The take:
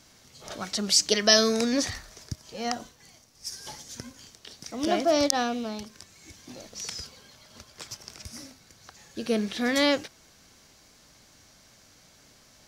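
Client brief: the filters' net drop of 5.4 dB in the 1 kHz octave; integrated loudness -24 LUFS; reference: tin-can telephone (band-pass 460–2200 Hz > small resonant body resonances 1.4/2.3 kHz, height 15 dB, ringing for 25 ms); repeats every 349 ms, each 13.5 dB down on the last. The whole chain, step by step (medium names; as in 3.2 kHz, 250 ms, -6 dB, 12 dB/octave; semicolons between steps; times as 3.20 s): band-pass 460–2200 Hz; peaking EQ 1 kHz -8 dB; feedback delay 349 ms, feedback 21%, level -13.5 dB; small resonant body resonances 1.4/2.3 kHz, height 15 dB, ringing for 25 ms; trim +7 dB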